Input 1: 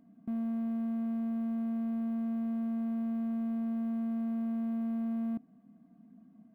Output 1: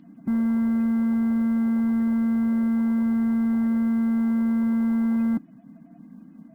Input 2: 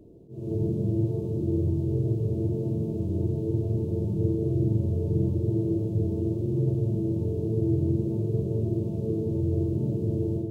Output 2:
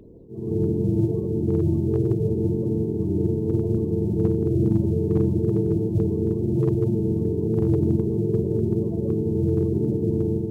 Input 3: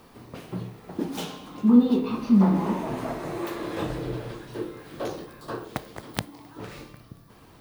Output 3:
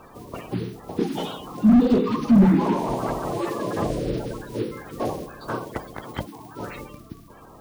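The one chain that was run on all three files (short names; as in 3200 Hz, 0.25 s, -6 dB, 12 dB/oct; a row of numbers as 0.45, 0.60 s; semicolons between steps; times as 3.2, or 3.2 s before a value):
bin magnitudes rounded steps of 30 dB; slew limiter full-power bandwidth 33 Hz; match loudness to -23 LUFS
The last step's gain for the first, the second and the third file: +12.0, +5.0, +6.0 dB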